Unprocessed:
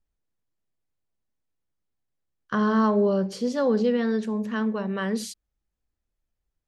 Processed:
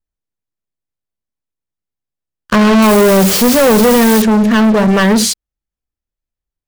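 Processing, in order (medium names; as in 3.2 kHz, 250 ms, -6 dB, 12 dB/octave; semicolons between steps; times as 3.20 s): 2.82–4.22 s: word length cut 6-bit, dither triangular; waveshaping leveller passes 5; trim +5.5 dB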